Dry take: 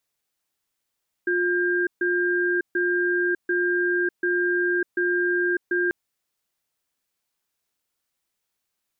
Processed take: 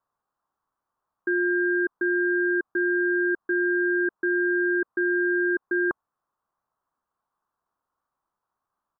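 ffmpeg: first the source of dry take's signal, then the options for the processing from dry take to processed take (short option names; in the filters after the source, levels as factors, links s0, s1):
-f lavfi -i "aevalsrc='0.075*(sin(2*PI*354*t)+sin(2*PI*1600*t))*clip(min(mod(t,0.74),0.6-mod(t,0.74))/0.005,0,1)':d=4.64:s=44100"
-af "firequalizer=gain_entry='entry(470,0);entry(1100,13);entry(2200,-19)':delay=0.05:min_phase=1"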